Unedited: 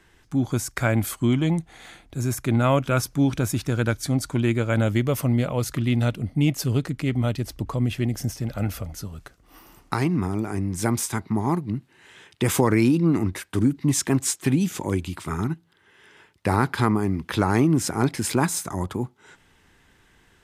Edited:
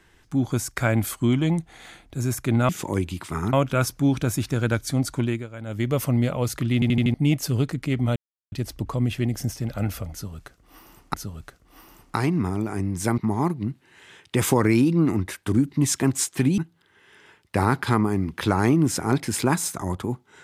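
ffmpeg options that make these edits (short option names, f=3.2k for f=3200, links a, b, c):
-filter_complex "[0:a]asplit=14[a][b][c][d][e][f][g][h][i][j][k][l][m][n];[a]atrim=end=2.692[o];[b]atrim=start=14.648:end=15.492[p];[c]atrim=start=2.688:end=4.63,asetpts=PTS-STARTPTS,afade=t=out:st=1.662:d=0.28:silence=0.177828[q];[d]atrim=start=4.63:end=4.81,asetpts=PTS-STARTPTS,volume=-15dB[r];[e]atrim=start=4.81:end=5.982,asetpts=PTS-STARTPTS,afade=t=in:d=0.28:silence=0.177828[s];[f]atrim=start=5.898:end=5.982[t];[g]atrim=start=5.898:end=5.982[u];[h]atrim=start=5.898:end=5.982[v];[i]atrim=start=5.898:end=5.982[w];[j]atrim=start=6.298:end=7.32,asetpts=PTS-STARTPTS,afade=t=out:st=1.018:d=0.004:c=hsin,apad=pad_dur=0.36[x];[k]atrim=start=7.32:end=9.942,asetpts=PTS-STARTPTS,afade=t=in:d=0.004:c=hsin[y];[l]atrim=start=8.918:end=10.962[z];[m]atrim=start=11.248:end=14.652[aa];[n]atrim=start=15.488[ab];[o][p]acrossfade=d=0.004:c1=hsin:c2=hsin[ac];[q][r][s]concat=n=3:v=0:a=1[ad];[ac][ad]acrossfade=d=0.004:c1=hsin:c2=hsin[ae];[ae][t]acrossfade=d=0.004:c1=hsin:c2=hsin[af];[af][u]acrossfade=d=0.004:c1=hsin:c2=hsin[ag];[ag][v]acrossfade=d=0.004:c1=hsin:c2=hsin[ah];[ah][w]acrossfade=d=0.004:c1=hsin:c2=hsin[ai];[x][y]concat=n=2:v=0:a=1[aj];[ai][aj]acrossfade=d=0.004:c1=hsin:c2=hsin[ak];[ak][z]acrossfade=d=0.004:c1=hsin:c2=hsin[al];[al][aa]acrossfade=d=0.004:c1=hsin:c2=hsin[am];[am][ab]acrossfade=d=0.004:c1=hsin:c2=hsin"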